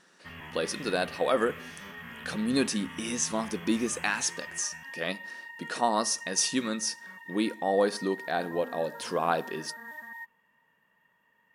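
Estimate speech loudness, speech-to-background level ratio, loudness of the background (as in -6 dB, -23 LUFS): -30.0 LUFS, 12.5 dB, -42.5 LUFS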